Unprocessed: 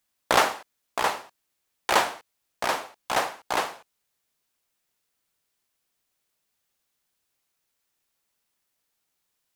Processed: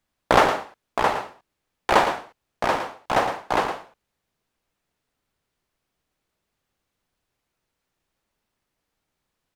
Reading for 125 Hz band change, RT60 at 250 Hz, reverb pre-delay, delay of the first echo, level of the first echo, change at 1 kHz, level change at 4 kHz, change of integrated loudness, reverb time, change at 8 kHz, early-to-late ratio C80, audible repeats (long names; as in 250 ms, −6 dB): +10.5 dB, no reverb audible, no reverb audible, 113 ms, −9.0 dB, +4.5 dB, −1.0 dB, +3.5 dB, no reverb audible, −5.0 dB, no reverb audible, 1